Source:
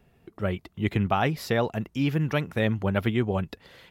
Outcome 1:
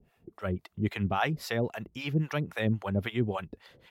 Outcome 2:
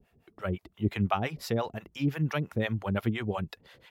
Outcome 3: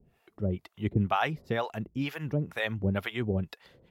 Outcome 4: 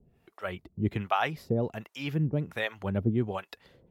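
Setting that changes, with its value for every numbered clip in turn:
harmonic tremolo, rate: 3.7, 5.8, 2.1, 1.3 Hz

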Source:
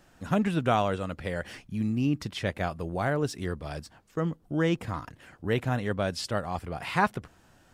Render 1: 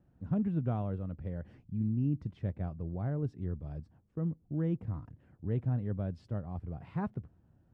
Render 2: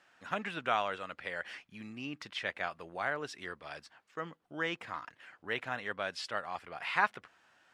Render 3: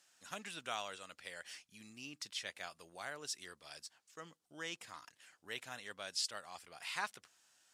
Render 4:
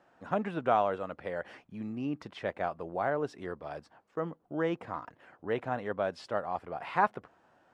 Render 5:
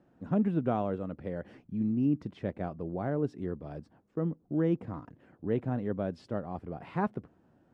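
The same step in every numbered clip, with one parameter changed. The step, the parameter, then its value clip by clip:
band-pass, frequency: 100, 2000, 6900, 770, 270 Hz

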